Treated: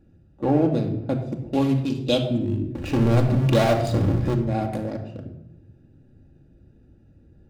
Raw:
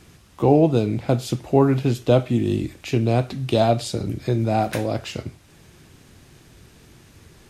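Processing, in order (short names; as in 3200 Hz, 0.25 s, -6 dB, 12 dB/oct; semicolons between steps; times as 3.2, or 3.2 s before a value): Wiener smoothing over 41 samples; 1.53–2.22 resonant high shelf 2300 Hz +12.5 dB, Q 1.5; 2.75–4.35 power-law curve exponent 0.5; reverb RT60 0.85 s, pre-delay 4 ms, DRR 3 dB; gain -6 dB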